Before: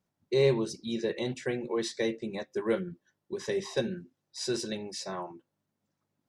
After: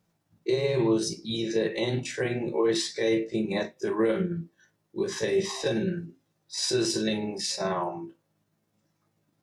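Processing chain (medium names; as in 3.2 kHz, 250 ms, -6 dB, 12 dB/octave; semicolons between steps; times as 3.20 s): peak limiter -25.5 dBFS, peak gain reduction 11.5 dB; granular stretch 1.5×, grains 108 ms; gated-style reverb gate 80 ms falling, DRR 5.5 dB; trim +8 dB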